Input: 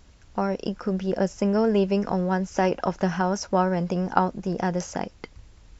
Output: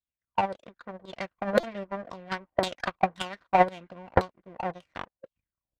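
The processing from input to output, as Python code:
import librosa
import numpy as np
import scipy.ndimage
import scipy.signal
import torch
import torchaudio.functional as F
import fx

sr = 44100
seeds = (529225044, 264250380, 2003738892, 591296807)

y = fx.tracing_dist(x, sr, depth_ms=0.43)
y = fx.filter_lfo_lowpass(y, sr, shape='saw_down', hz=1.9, low_hz=410.0, high_hz=3300.0, q=7.8)
y = fx.power_curve(y, sr, exponent=2.0)
y = fx.formant_shift(y, sr, semitones=4)
y = fx.notch_comb(y, sr, f0_hz=430.0)
y = fx.buffer_glitch(y, sr, at_s=(1.6,), block=128, repeats=10)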